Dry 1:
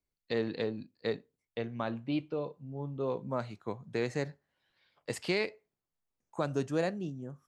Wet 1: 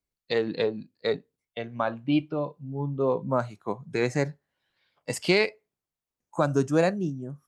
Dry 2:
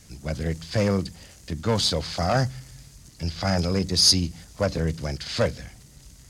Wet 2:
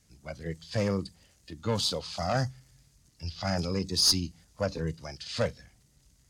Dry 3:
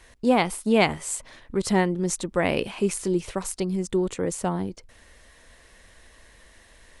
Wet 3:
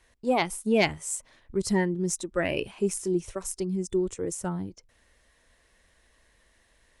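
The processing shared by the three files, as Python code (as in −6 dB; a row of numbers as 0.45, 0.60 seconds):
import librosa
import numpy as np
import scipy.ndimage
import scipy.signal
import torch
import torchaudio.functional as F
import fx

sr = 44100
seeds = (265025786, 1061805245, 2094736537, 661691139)

y = fx.cheby_harmonics(x, sr, harmonics=(2, 4), levels_db=(-11, -28), full_scale_db=-5.0)
y = fx.noise_reduce_blind(y, sr, reduce_db=9)
y = y * 10.0 ** (-9 / 20.0) / np.max(np.abs(y))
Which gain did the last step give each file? +9.0, −6.0, −2.0 decibels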